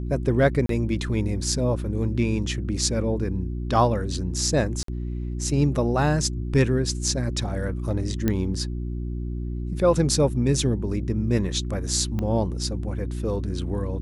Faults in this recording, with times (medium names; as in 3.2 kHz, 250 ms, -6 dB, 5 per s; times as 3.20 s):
hum 60 Hz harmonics 6 -29 dBFS
0.66–0.69 s: dropout 33 ms
4.83–4.88 s: dropout 53 ms
8.28 s: pop -10 dBFS
12.19 s: pop -17 dBFS